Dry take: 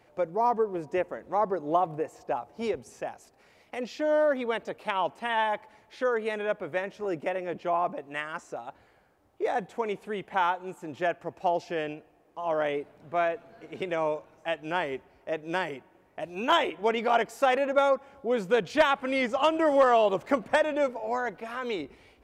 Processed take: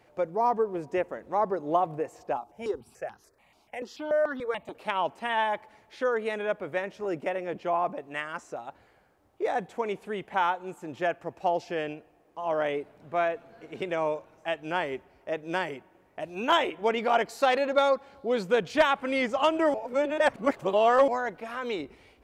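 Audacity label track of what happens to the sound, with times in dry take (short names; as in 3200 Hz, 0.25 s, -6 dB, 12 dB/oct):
2.370000	4.750000	step phaser 6.9 Hz 510–2300 Hz
17.270000	18.430000	bell 4200 Hz +14.5 dB 0.33 oct
19.740000	21.080000	reverse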